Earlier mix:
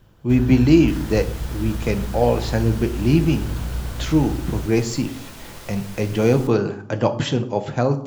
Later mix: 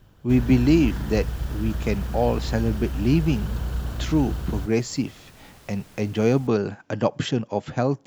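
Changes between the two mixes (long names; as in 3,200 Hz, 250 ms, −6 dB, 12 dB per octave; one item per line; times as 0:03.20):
second sound −8.5 dB
reverb: off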